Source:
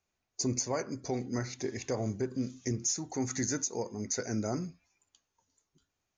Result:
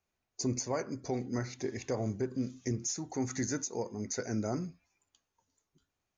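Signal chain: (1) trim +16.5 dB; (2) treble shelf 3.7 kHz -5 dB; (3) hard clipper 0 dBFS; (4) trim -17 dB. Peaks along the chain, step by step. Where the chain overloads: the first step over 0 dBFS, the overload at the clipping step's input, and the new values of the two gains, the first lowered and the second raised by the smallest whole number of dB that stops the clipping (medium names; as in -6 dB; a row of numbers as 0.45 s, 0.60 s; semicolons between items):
-3.5 dBFS, -4.0 dBFS, -4.0 dBFS, -21.0 dBFS; nothing clips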